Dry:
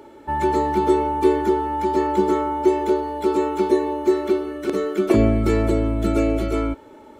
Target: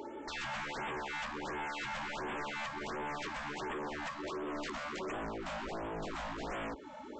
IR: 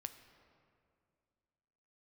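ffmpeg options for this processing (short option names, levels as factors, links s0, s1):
-af "highpass=49,acompressor=threshold=0.0447:ratio=20,aresample=16000,aeval=exprs='0.0211*(abs(mod(val(0)/0.0211+3,4)-2)-1)':c=same,aresample=44100,equalizer=f=94:t=o:w=0.82:g=-14,afftfilt=real='re*(1-between(b*sr/1024,340*pow(5200/340,0.5+0.5*sin(2*PI*1.4*pts/sr))/1.41,340*pow(5200/340,0.5+0.5*sin(2*PI*1.4*pts/sr))*1.41))':imag='im*(1-between(b*sr/1024,340*pow(5200/340,0.5+0.5*sin(2*PI*1.4*pts/sr))/1.41,340*pow(5200/340,0.5+0.5*sin(2*PI*1.4*pts/sr))*1.41))':win_size=1024:overlap=0.75"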